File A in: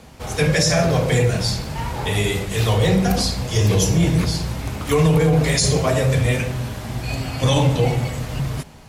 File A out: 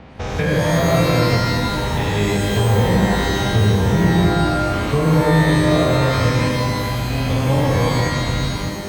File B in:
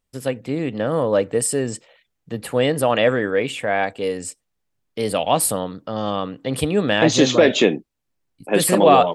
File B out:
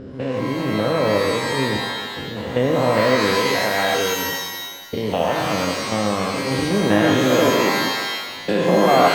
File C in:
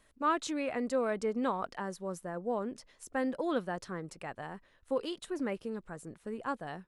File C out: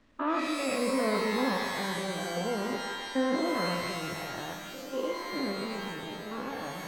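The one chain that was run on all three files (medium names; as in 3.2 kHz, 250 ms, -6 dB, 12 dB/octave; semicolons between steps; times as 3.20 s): spectrogram pixelated in time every 200 ms; low-pass that closes with the level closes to 2 kHz, closed at -16.5 dBFS; in parallel at +1 dB: compression, threshold -28 dBFS; on the sum: level-controlled noise filter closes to 2.6 kHz, open at -16.5 dBFS; bit crusher 11-bit; distance through air 94 m; pitch-shifted reverb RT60 1.3 s, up +12 st, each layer -2 dB, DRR 4.5 dB; trim -1 dB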